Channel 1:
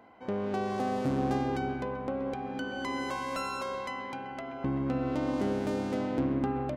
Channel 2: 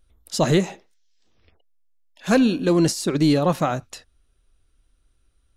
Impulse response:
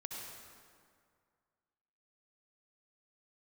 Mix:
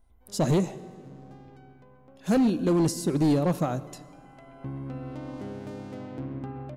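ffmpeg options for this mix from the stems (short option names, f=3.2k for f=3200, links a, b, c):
-filter_complex "[0:a]equalizer=f=120:w=3.1:g=13,volume=-8.5dB,afade=t=in:st=4.07:d=0.58:silence=0.223872[a];[1:a]equalizer=f=2.3k:w=0.33:g=-10.5,volume=-2.5dB,asplit=2[b][c];[c]volume=-12.5dB[d];[2:a]atrim=start_sample=2205[e];[d][e]afir=irnorm=-1:irlink=0[f];[a][b][f]amix=inputs=3:normalize=0,asoftclip=type=hard:threshold=-18dB"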